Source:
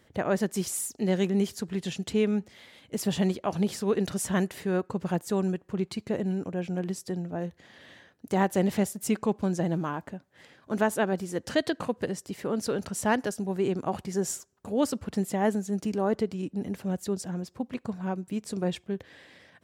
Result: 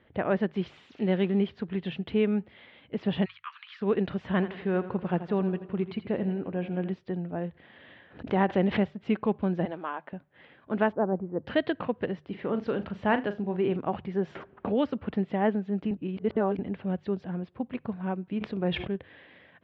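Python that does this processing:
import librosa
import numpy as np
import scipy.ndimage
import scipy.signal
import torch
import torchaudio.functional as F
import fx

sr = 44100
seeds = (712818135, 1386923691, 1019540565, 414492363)

y = fx.crossing_spikes(x, sr, level_db=-32.0, at=(0.65, 1.4))
y = fx.steep_highpass(y, sr, hz=1100.0, slope=72, at=(3.24, 3.8), fade=0.02)
y = fx.echo_feedback(y, sr, ms=83, feedback_pct=56, wet_db=-13.0, at=(4.3, 6.94))
y = fx.pre_swell(y, sr, db_per_s=140.0, at=(7.44, 8.82))
y = fx.highpass(y, sr, hz=490.0, slope=12, at=(9.65, 10.13))
y = fx.lowpass(y, sr, hz=1100.0, slope=24, at=(10.91, 11.45), fade=0.02)
y = fx.room_flutter(y, sr, wall_m=6.7, rt60_s=0.21, at=(12.28, 13.77))
y = fx.band_squash(y, sr, depth_pct=70, at=(14.35, 15.14))
y = fx.sustainer(y, sr, db_per_s=64.0, at=(18.28, 18.96))
y = fx.edit(y, sr, fx.reverse_span(start_s=15.91, length_s=0.68), tone=tone)
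y = scipy.signal.sosfilt(scipy.signal.butter(6, 3300.0, 'lowpass', fs=sr, output='sos'), y)
y = fx.hum_notches(y, sr, base_hz=50, count=3)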